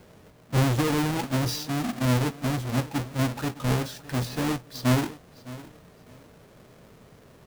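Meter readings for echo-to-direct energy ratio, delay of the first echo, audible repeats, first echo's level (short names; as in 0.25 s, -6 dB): -17.5 dB, 0.611 s, 2, -18.0 dB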